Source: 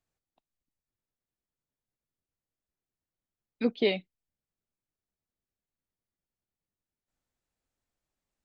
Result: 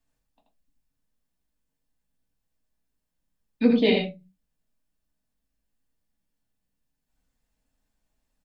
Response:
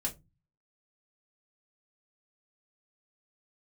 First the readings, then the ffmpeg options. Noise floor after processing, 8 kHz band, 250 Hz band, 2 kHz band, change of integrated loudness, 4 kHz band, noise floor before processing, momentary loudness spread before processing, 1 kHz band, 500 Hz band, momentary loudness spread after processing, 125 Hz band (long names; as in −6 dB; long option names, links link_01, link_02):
−81 dBFS, can't be measured, +10.5 dB, +5.5 dB, +7.5 dB, +6.0 dB, below −85 dBFS, 7 LU, +7.5 dB, +5.5 dB, 9 LU, +10.0 dB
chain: -filter_complex "[0:a]aecho=1:1:82:0.596[link_01];[1:a]atrim=start_sample=2205,afade=type=out:start_time=0.34:duration=0.01,atrim=end_sample=15435[link_02];[link_01][link_02]afir=irnorm=-1:irlink=0,volume=3dB"